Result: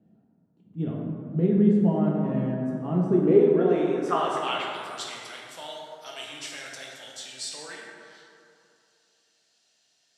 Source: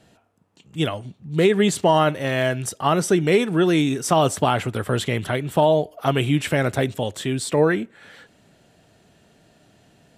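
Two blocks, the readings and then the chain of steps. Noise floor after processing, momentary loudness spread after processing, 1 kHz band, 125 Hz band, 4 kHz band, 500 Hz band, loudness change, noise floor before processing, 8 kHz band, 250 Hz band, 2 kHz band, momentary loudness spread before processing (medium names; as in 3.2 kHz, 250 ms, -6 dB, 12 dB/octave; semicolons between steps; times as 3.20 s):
-69 dBFS, 20 LU, -9.0 dB, -5.5 dB, -8.0 dB, -5.5 dB, -4.0 dB, -58 dBFS, -11.0 dB, -2.5 dB, -12.0 dB, 8 LU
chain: band-pass sweep 210 Hz -> 5.3 kHz, 3.00–4.93 s; plate-style reverb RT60 2.6 s, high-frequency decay 0.4×, DRR -3 dB; trim -1 dB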